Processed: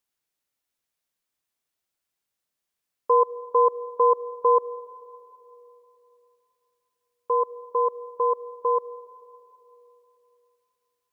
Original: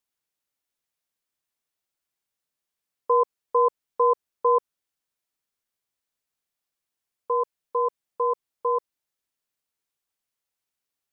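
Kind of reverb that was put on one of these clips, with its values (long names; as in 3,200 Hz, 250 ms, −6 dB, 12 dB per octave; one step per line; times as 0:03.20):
comb and all-pass reverb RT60 3.2 s, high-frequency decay 0.95×, pre-delay 55 ms, DRR 16 dB
level +1.5 dB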